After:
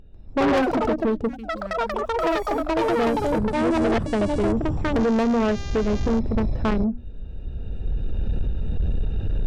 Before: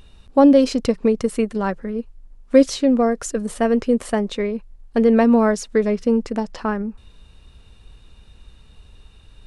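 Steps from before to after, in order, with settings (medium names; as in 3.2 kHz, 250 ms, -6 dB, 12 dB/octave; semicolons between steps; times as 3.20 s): local Wiener filter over 41 samples; recorder AGC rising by 14 dB/s; 1.28–2.97 s: amplifier tone stack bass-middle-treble 6-0-2; 4.98–6.18 s: mains buzz 400 Hz, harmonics 17, -38 dBFS -1 dB/octave; ever faster or slower copies 145 ms, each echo +6 st, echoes 3; treble shelf 7 kHz -8.5 dB; hum notches 60/120/180/240/300 Hz; saturation -17 dBFS, distortion -8 dB; 3.53–4.06 s: reverse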